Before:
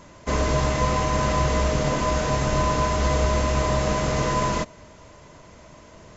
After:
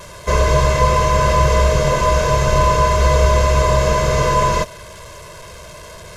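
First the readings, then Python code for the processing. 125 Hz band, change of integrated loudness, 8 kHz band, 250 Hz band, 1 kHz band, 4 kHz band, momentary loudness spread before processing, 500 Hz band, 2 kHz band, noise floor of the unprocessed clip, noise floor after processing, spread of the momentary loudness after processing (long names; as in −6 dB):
+7.5 dB, +7.5 dB, can't be measured, +1.0 dB, +8.5 dB, +6.0 dB, 3 LU, +8.5 dB, +7.0 dB, −48 dBFS, −37 dBFS, 3 LU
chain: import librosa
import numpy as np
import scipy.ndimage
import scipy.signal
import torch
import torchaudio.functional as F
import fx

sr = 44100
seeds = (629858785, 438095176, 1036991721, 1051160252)

y = fx.delta_mod(x, sr, bps=64000, step_db=-37.5)
y = y + 0.9 * np.pad(y, (int(1.9 * sr / 1000.0), 0))[:len(y)]
y = y * 10.0 ** (4.0 / 20.0)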